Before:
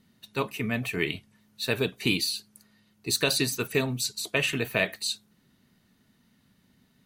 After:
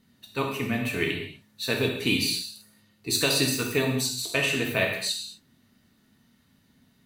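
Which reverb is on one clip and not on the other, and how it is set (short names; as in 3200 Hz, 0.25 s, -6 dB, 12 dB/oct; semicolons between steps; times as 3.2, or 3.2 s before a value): non-linear reverb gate 0.27 s falling, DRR 0.5 dB; gain -1 dB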